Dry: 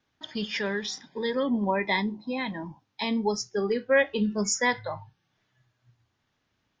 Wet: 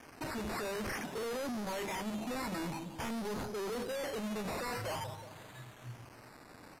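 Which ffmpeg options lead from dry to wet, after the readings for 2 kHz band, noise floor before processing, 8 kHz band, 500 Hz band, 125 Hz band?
−12.5 dB, −76 dBFS, −11.5 dB, −10.5 dB, −5.0 dB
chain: -filter_complex "[0:a]tiltshelf=frequency=650:gain=5,asplit=2[link_01][link_02];[link_02]highpass=frequency=720:poles=1,volume=35dB,asoftclip=type=tanh:threshold=-11dB[link_03];[link_01][link_03]amix=inputs=2:normalize=0,lowpass=frequency=3400:poles=1,volume=-6dB,alimiter=limit=-23dB:level=0:latency=1:release=261,equalizer=frequency=2300:width_type=o:width=1.2:gain=-5,asplit=2[link_04][link_05];[link_05]adelay=182,lowpass=frequency=920:poles=1,volume=-14dB,asplit=2[link_06][link_07];[link_07]adelay=182,lowpass=frequency=920:poles=1,volume=0.44,asplit=2[link_08][link_09];[link_09]adelay=182,lowpass=frequency=920:poles=1,volume=0.44,asplit=2[link_10][link_11];[link_11]adelay=182,lowpass=frequency=920:poles=1,volume=0.44[link_12];[link_04][link_06][link_08][link_10][link_12]amix=inputs=5:normalize=0,tremolo=f=22:d=0.261,acrusher=bits=8:mix=0:aa=0.000001,asoftclip=type=tanh:threshold=-36.5dB,bandreject=frequency=50:width_type=h:width=6,bandreject=frequency=100:width_type=h:width=6,bandreject=frequency=150:width_type=h:width=6,bandreject=frequency=200:width_type=h:width=6,acrusher=samples=11:mix=1:aa=0.000001:lfo=1:lforange=6.6:lforate=0.5" -ar 32000 -c:a libvorbis -b:a 128k

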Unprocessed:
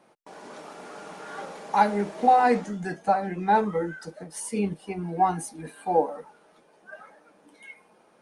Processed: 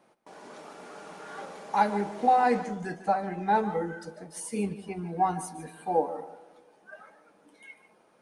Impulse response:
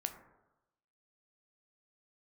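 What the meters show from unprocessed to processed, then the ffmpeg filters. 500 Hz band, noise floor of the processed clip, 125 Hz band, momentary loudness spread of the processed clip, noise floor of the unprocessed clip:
−3.5 dB, −63 dBFS, −3.0 dB, 21 LU, −60 dBFS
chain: -filter_complex "[0:a]asplit=2[link_01][link_02];[1:a]atrim=start_sample=2205,asetrate=30870,aresample=44100,adelay=148[link_03];[link_02][link_03]afir=irnorm=-1:irlink=0,volume=-14.5dB[link_04];[link_01][link_04]amix=inputs=2:normalize=0,volume=-3.5dB"

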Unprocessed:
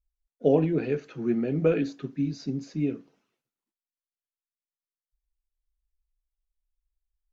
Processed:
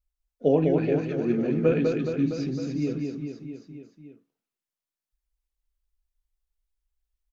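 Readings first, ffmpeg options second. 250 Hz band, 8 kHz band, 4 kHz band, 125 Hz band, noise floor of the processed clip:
+2.5 dB, can't be measured, +2.0 dB, +2.0 dB, below −85 dBFS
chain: -af "aecho=1:1:200|420|662|928.2|1221:0.631|0.398|0.251|0.158|0.1"

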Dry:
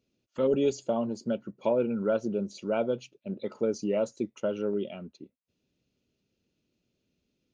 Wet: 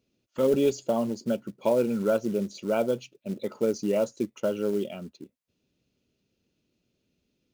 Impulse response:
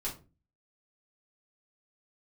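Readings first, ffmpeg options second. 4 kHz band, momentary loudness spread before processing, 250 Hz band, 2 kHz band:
+3.5 dB, 10 LU, +2.5 dB, +3.0 dB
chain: -af "acrusher=bits=6:mode=log:mix=0:aa=0.000001,volume=2.5dB"

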